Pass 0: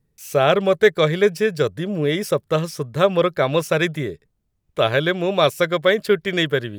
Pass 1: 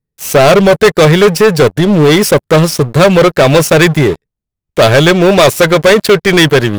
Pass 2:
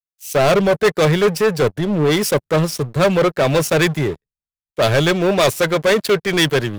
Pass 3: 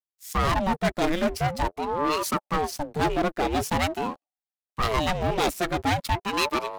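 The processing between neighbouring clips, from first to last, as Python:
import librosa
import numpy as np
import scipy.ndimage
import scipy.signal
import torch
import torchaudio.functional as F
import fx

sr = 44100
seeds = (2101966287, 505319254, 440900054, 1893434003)

y1 = fx.leveller(x, sr, passes=5)
y2 = fx.band_widen(y1, sr, depth_pct=70)
y2 = F.gain(torch.from_numpy(y2), -8.5).numpy()
y3 = fx.ring_lfo(y2, sr, carrier_hz=470.0, swing_pct=65, hz=0.45)
y3 = F.gain(torch.from_numpy(y3), -6.5).numpy()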